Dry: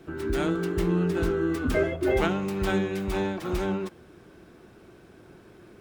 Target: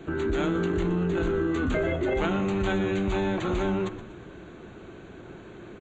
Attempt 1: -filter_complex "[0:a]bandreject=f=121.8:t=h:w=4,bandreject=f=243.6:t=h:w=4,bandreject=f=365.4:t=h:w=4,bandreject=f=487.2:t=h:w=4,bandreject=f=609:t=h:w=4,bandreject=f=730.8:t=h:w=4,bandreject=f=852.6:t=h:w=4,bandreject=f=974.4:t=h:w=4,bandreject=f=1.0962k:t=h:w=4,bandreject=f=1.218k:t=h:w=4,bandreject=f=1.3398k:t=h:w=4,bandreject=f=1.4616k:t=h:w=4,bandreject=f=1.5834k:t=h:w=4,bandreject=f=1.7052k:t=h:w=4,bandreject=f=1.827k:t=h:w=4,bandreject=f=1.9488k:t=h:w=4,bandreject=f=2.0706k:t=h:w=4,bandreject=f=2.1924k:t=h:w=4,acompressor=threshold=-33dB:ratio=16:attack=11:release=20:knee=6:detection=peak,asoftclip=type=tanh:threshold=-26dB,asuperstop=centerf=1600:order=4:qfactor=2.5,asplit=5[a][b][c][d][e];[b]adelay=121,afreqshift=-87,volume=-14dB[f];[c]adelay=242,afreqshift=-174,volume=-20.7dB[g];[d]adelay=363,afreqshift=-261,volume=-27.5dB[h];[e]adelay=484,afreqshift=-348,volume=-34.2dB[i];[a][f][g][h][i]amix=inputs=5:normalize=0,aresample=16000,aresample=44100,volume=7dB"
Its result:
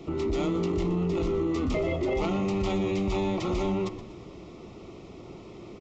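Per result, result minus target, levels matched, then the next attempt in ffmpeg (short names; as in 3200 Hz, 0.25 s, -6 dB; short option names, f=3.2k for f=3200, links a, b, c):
soft clip: distortion +14 dB; 2000 Hz band -6.0 dB
-filter_complex "[0:a]bandreject=f=121.8:t=h:w=4,bandreject=f=243.6:t=h:w=4,bandreject=f=365.4:t=h:w=4,bandreject=f=487.2:t=h:w=4,bandreject=f=609:t=h:w=4,bandreject=f=730.8:t=h:w=4,bandreject=f=852.6:t=h:w=4,bandreject=f=974.4:t=h:w=4,bandreject=f=1.0962k:t=h:w=4,bandreject=f=1.218k:t=h:w=4,bandreject=f=1.3398k:t=h:w=4,bandreject=f=1.4616k:t=h:w=4,bandreject=f=1.5834k:t=h:w=4,bandreject=f=1.7052k:t=h:w=4,bandreject=f=1.827k:t=h:w=4,bandreject=f=1.9488k:t=h:w=4,bandreject=f=2.0706k:t=h:w=4,bandreject=f=2.1924k:t=h:w=4,acompressor=threshold=-33dB:ratio=16:attack=11:release=20:knee=6:detection=peak,asoftclip=type=tanh:threshold=-17.5dB,asuperstop=centerf=1600:order=4:qfactor=2.5,asplit=5[a][b][c][d][e];[b]adelay=121,afreqshift=-87,volume=-14dB[f];[c]adelay=242,afreqshift=-174,volume=-20.7dB[g];[d]adelay=363,afreqshift=-261,volume=-27.5dB[h];[e]adelay=484,afreqshift=-348,volume=-34.2dB[i];[a][f][g][h][i]amix=inputs=5:normalize=0,aresample=16000,aresample=44100,volume=7dB"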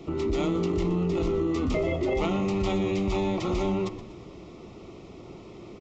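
2000 Hz band -6.0 dB
-filter_complex "[0:a]bandreject=f=121.8:t=h:w=4,bandreject=f=243.6:t=h:w=4,bandreject=f=365.4:t=h:w=4,bandreject=f=487.2:t=h:w=4,bandreject=f=609:t=h:w=4,bandreject=f=730.8:t=h:w=4,bandreject=f=852.6:t=h:w=4,bandreject=f=974.4:t=h:w=4,bandreject=f=1.0962k:t=h:w=4,bandreject=f=1.218k:t=h:w=4,bandreject=f=1.3398k:t=h:w=4,bandreject=f=1.4616k:t=h:w=4,bandreject=f=1.5834k:t=h:w=4,bandreject=f=1.7052k:t=h:w=4,bandreject=f=1.827k:t=h:w=4,bandreject=f=1.9488k:t=h:w=4,bandreject=f=2.0706k:t=h:w=4,bandreject=f=2.1924k:t=h:w=4,acompressor=threshold=-33dB:ratio=16:attack=11:release=20:knee=6:detection=peak,asoftclip=type=tanh:threshold=-17.5dB,asuperstop=centerf=5200:order=4:qfactor=2.5,asplit=5[a][b][c][d][e];[b]adelay=121,afreqshift=-87,volume=-14dB[f];[c]adelay=242,afreqshift=-174,volume=-20.7dB[g];[d]adelay=363,afreqshift=-261,volume=-27.5dB[h];[e]adelay=484,afreqshift=-348,volume=-34.2dB[i];[a][f][g][h][i]amix=inputs=5:normalize=0,aresample=16000,aresample=44100,volume=7dB"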